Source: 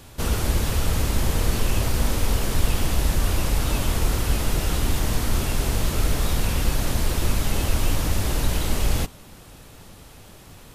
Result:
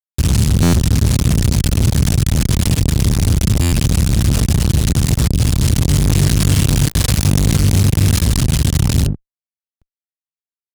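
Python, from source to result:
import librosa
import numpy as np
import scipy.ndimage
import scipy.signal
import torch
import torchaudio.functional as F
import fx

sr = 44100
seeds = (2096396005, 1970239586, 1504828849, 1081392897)

y = x * (1.0 - 0.45 / 2.0 + 0.45 / 2.0 * np.cos(2.0 * np.pi * 4.9 * (np.arange(len(x)) / sr)))
y = fx.curve_eq(y, sr, hz=(150.0, 400.0, 4500.0), db=(0, -30, -4))
y = fx.quant_dither(y, sr, seeds[0], bits=6, dither='none')
y = scipy.signal.sosfilt(scipy.signal.butter(4, 11000.0, 'lowpass', fs=sr, output='sos'), y)
y = fx.hum_notches(y, sr, base_hz=50, count=3)
y = fx.room_flutter(y, sr, wall_m=3.5, rt60_s=1.0, at=(5.89, 8.19))
y = fx.fuzz(y, sr, gain_db=38.0, gate_db=-46.0)
y = scipy.signal.sosfilt(scipy.signal.butter(2, 80.0, 'highpass', fs=sr, output='sos'), y)
y = fx.low_shelf(y, sr, hz=290.0, db=11.0)
y = fx.buffer_glitch(y, sr, at_s=(0.62, 3.61, 9.7), block=512, repeats=9)
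y = fx.env_flatten(y, sr, amount_pct=50)
y = y * librosa.db_to_amplitude(-4.0)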